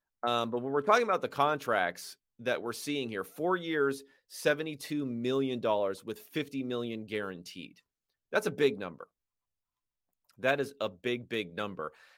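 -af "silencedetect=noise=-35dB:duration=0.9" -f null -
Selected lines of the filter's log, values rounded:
silence_start: 9.03
silence_end: 10.44 | silence_duration: 1.41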